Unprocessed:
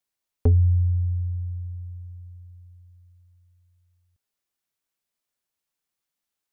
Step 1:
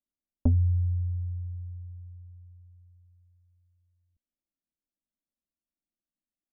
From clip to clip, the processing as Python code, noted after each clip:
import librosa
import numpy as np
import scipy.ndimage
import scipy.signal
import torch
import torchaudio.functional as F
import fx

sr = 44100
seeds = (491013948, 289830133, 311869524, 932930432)

y = scipy.signal.sosfilt(scipy.signal.cheby1(3, 1.0, 590.0, 'lowpass', fs=sr, output='sos'), x)
y = fx.fixed_phaser(y, sr, hz=440.0, stages=6)
y = fx.env_lowpass(y, sr, base_hz=420.0, full_db=-31.0)
y = y * librosa.db_to_amplitude(3.5)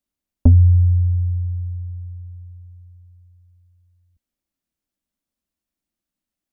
y = fx.peak_eq(x, sr, hz=70.0, db=5.0, octaves=2.6)
y = y * librosa.db_to_amplitude(7.5)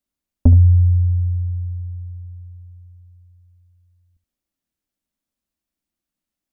y = x + 10.0 ** (-13.0 / 20.0) * np.pad(x, (int(70 * sr / 1000.0), 0))[:len(x)]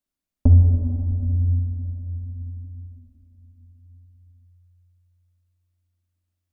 y = fx.room_shoebox(x, sr, seeds[0], volume_m3=200.0, walls='hard', distance_m=0.34)
y = y * librosa.db_to_amplitude(-3.5)